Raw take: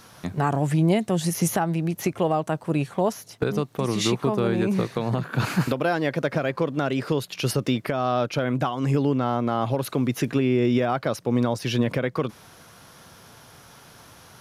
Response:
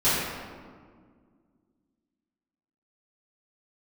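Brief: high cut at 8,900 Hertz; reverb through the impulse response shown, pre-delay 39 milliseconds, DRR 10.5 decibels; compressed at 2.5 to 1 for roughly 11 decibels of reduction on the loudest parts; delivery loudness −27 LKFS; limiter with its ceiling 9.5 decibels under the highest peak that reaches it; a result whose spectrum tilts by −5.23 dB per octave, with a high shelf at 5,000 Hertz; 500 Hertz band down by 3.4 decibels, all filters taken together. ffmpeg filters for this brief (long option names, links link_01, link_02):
-filter_complex "[0:a]lowpass=8900,equalizer=frequency=500:width_type=o:gain=-4.5,highshelf=frequency=5000:gain=4,acompressor=threshold=-35dB:ratio=2.5,alimiter=level_in=4.5dB:limit=-24dB:level=0:latency=1,volume=-4.5dB,asplit=2[link_01][link_02];[1:a]atrim=start_sample=2205,adelay=39[link_03];[link_02][link_03]afir=irnorm=-1:irlink=0,volume=-27dB[link_04];[link_01][link_04]amix=inputs=2:normalize=0,volume=11.5dB"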